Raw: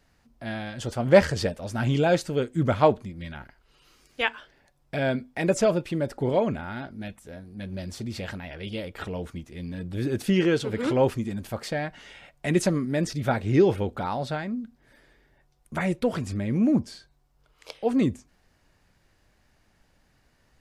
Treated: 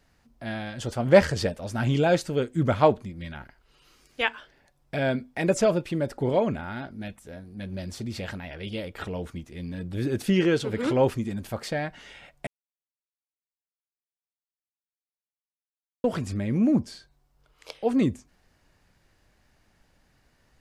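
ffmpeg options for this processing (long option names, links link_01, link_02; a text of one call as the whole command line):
ffmpeg -i in.wav -filter_complex "[0:a]asplit=3[link_01][link_02][link_03];[link_01]atrim=end=12.47,asetpts=PTS-STARTPTS,afade=type=out:start_time=12.466:duration=0.004:curve=hsin[link_04];[link_02]atrim=start=12.47:end=16.04,asetpts=PTS-STARTPTS,volume=0[link_05];[link_03]atrim=start=16.04,asetpts=PTS-STARTPTS,afade=type=in:duration=0.004:curve=hsin[link_06];[link_04][link_05][link_06]concat=n=3:v=0:a=1" out.wav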